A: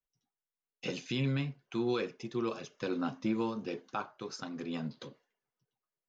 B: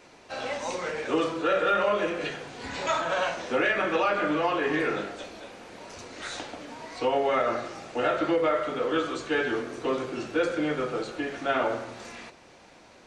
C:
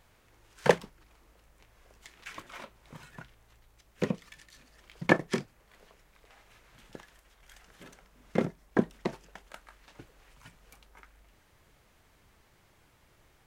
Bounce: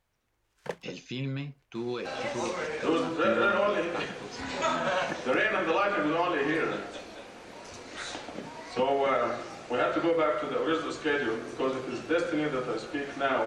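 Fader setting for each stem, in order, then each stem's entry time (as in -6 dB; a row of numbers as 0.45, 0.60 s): -2.0, -1.5, -14.0 dB; 0.00, 1.75, 0.00 s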